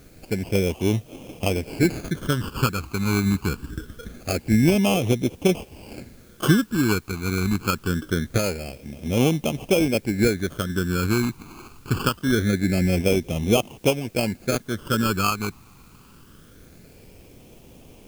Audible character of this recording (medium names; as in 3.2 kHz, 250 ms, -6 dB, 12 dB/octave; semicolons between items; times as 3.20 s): aliases and images of a low sample rate 1.9 kHz, jitter 0%; phasing stages 12, 0.24 Hz, lowest notch 570–1500 Hz; a quantiser's noise floor 10-bit, dither triangular